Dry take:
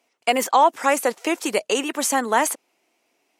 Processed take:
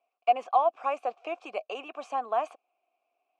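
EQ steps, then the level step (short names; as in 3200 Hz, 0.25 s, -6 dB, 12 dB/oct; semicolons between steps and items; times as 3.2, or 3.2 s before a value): vowel filter a; air absorption 76 m; 0.0 dB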